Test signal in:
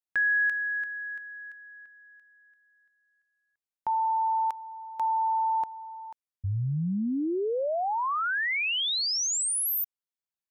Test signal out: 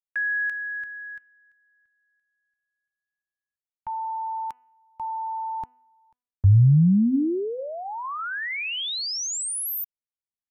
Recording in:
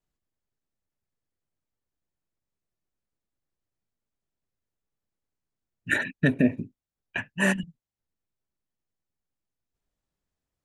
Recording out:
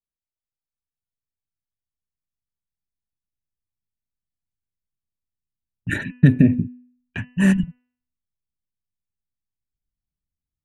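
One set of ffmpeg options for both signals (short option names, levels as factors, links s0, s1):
-af "asubboost=boost=7.5:cutoff=220,agate=range=0.158:threshold=0.00891:ratio=16:release=36:detection=peak,bandreject=f=247.7:t=h:w=4,bandreject=f=495.4:t=h:w=4,bandreject=f=743.1:t=h:w=4,bandreject=f=990.8:t=h:w=4,bandreject=f=1238.5:t=h:w=4,bandreject=f=1486.2:t=h:w=4,bandreject=f=1733.9:t=h:w=4,bandreject=f=1981.6:t=h:w=4,bandreject=f=2229.3:t=h:w=4,bandreject=f=2477:t=h:w=4,bandreject=f=2724.7:t=h:w=4,bandreject=f=2972.4:t=h:w=4,volume=0.891"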